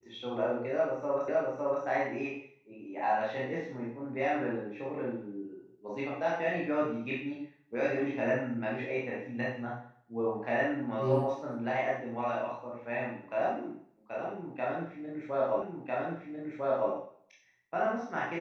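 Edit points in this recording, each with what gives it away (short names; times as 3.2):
1.28 repeat of the last 0.56 s
15.62 repeat of the last 1.3 s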